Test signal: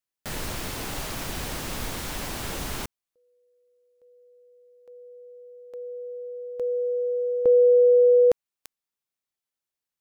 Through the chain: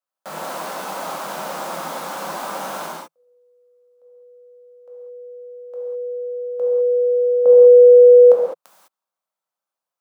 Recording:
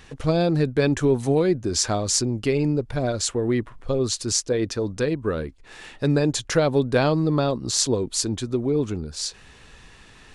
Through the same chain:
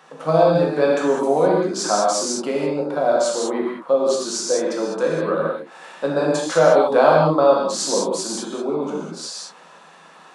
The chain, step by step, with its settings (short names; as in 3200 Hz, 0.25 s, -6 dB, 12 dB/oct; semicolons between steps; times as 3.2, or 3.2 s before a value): Chebyshev high-pass 160 Hz, order 6; band shelf 850 Hz +12 dB; non-linear reverb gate 0.23 s flat, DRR -4 dB; gain -5.5 dB